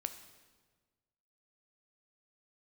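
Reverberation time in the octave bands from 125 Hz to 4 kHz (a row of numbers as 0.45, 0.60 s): 1.8, 1.6, 1.5, 1.3, 1.2, 1.2 s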